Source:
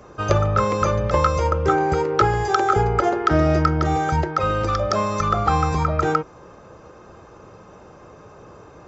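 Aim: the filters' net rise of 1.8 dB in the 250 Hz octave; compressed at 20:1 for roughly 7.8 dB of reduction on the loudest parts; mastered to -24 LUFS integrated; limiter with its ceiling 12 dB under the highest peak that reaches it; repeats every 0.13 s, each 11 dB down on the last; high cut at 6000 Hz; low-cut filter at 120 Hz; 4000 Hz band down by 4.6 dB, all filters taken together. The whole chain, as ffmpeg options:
-af "highpass=120,lowpass=6k,equalizer=f=250:t=o:g=3.5,equalizer=f=4k:t=o:g=-5,acompressor=threshold=-21dB:ratio=20,alimiter=limit=-22.5dB:level=0:latency=1,aecho=1:1:130|260|390:0.282|0.0789|0.0221,volume=6dB"

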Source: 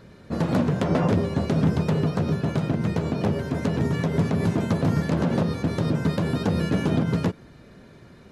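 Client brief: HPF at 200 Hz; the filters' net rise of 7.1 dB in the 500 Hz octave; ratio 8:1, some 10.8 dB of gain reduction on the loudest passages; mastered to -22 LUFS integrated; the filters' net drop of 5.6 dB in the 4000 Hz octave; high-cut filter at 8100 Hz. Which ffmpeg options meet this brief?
-af "highpass=200,lowpass=8.1k,equalizer=f=500:t=o:g=9,equalizer=f=4k:t=o:g=-7.5,acompressor=threshold=-27dB:ratio=8,volume=9.5dB"

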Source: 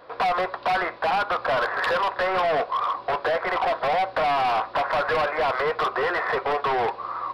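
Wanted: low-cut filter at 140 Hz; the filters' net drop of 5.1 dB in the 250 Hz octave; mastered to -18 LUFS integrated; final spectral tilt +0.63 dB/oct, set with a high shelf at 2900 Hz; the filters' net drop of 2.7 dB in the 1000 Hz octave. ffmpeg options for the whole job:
-af "highpass=140,equalizer=f=250:t=o:g=-8,equalizer=f=1k:t=o:g=-3.5,highshelf=f=2.9k:g=3,volume=8dB"

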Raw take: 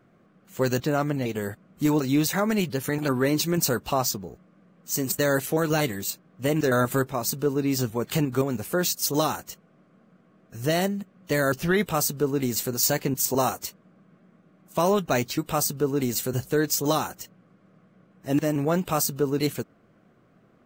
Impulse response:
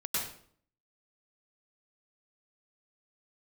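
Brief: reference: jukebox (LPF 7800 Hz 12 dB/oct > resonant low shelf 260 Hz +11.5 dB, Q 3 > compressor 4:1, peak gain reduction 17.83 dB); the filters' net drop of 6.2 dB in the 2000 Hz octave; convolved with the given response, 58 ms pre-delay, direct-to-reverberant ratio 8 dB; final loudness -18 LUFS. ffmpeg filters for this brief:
-filter_complex "[0:a]equalizer=f=2k:t=o:g=-8,asplit=2[a][b];[1:a]atrim=start_sample=2205,adelay=58[c];[b][c]afir=irnorm=-1:irlink=0,volume=-13.5dB[d];[a][d]amix=inputs=2:normalize=0,lowpass=7.8k,lowshelf=f=260:t=q:w=3:g=11.5,acompressor=threshold=-26dB:ratio=4,volume=10dB"

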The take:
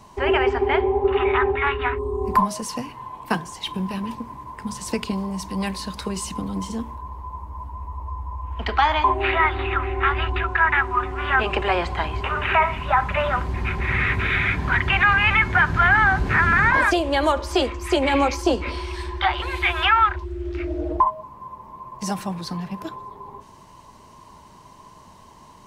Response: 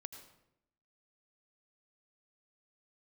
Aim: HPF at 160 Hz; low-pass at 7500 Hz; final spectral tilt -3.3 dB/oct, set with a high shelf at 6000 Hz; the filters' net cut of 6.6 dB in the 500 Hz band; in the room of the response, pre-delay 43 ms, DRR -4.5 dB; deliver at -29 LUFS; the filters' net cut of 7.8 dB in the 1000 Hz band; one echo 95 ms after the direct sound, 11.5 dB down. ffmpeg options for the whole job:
-filter_complex "[0:a]highpass=160,lowpass=7.5k,equalizer=f=500:t=o:g=-7.5,equalizer=f=1k:t=o:g=-8.5,highshelf=f=6k:g=8.5,aecho=1:1:95:0.266,asplit=2[a][b];[1:a]atrim=start_sample=2205,adelay=43[c];[b][c]afir=irnorm=-1:irlink=0,volume=9dB[d];[a][d]amix=inputs=2:normalize=0,volume=-10.5dB"

